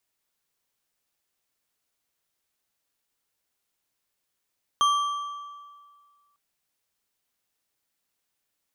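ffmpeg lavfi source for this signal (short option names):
-f lavfi -i "aevalsrc='0.141*pow(10,-3*t/1.85)*sin(2*PI*1160*t)+0.0562*pow(10,-3*t/1.365)*sin(2*PI*3198.1*t)+0.0224*pow(10,-3*t/1.115)*sin(2*PI*6268.6*t)+0.00891*pow(10,-3*t/0.959)*sin(2*PI*10362.3*t)+0.00355*pow(10,-3*t/0.85)*sin(2*PI*15474.4*t)':d=1.55:s=44100"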